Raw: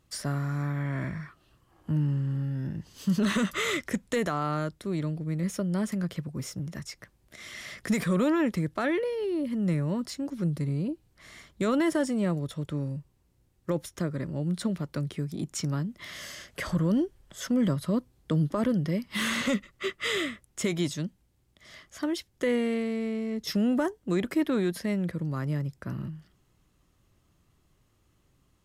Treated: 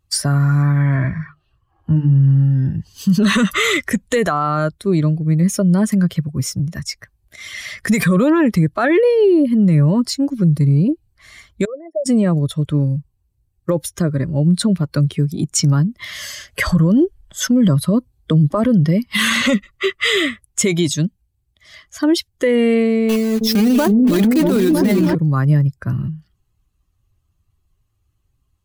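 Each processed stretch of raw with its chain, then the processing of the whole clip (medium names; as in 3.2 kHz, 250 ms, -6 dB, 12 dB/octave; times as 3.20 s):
0.96–2.23 s: treble shelf 6.2 kHz -9 dB + hum notches 50/100/150/200/250/300/350 Hz
11.65–12.06 s: resonances exaggerated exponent 3 + band-pass filter 750 Hz, Q 6
23.09–25.15 s: block-companded coder 3-bit + delay with an opening low-pass 319 ms, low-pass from 400 Hz, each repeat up 1 oct, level 0 dB
whole clip: expander on every frequency bin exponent 1.5; loudness maximiser +26.5 dB; trim -6.5 dB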